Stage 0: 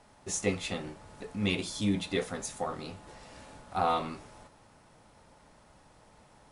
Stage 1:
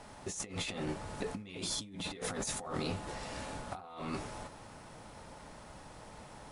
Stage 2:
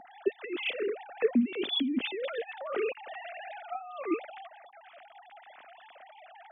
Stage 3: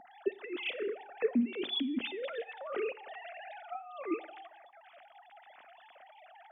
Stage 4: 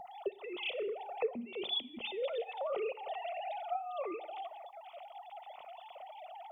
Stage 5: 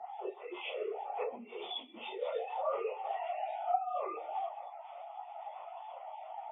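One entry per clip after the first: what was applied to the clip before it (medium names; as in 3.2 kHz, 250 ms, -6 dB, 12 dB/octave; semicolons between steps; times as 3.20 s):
compressor with a negative ratio -42 dBFS, ratio -1; trim +1 dB
formants replaced by sine waves; ten-band graphic EQ 250 Hz +12 dB, 500 Hz -4 dB, 1 kHz -9 dB; trim +7 dB
Schroeder reverb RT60 0.71 s, combs from 30 ms, DRR 18 dB; trim -4 dB
compression 2:1, threshold -42 dBFS, peak gain reduction 10 dB; static phaser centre 680 Hz, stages 4; trim +8.5 dB
phase randomisation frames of 100 ms; band-pass filter 980 Hz, Q 1.2; trim +5.5 dB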